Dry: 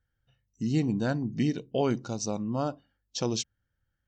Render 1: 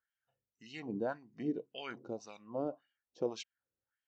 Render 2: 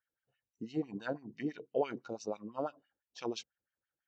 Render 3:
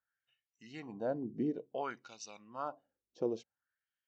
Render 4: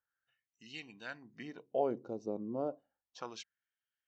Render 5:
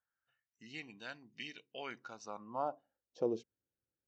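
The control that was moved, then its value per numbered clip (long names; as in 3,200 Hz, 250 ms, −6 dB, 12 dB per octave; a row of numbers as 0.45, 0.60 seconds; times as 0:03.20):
auto-filter band-pass, speed: 1.8, 6, 0.56, 0.32, 0.2 Hertz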